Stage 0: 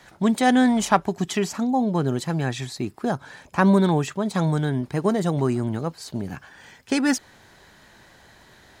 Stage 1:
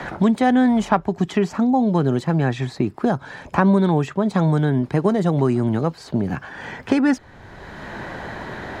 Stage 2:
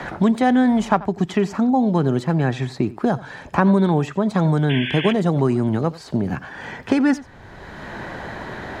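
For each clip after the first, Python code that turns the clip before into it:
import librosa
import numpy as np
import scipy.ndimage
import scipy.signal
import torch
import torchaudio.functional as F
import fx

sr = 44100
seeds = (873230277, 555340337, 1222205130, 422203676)

y1 = fx.lowpass(x, sr, hz=1700.0, slope=6)
y1 = fx.band_squash(y1, sr, depth_pct=70)
y1 = F.gain(torch.from_numpy(y1), 4.0).numpy()
y2 = fx.spec_paint(y1, sr, seeds[0], shape='noise', start_s=4.69, length_s=0.44, low_hz=1500.0, high_hz=3500.0, level_db=-28.0)
y2 = y2 + 10.0 ** (-19.0 / 20.0) * np.pad(y2, (int(88 * sr / 1000.0), 0))[:len(y2)]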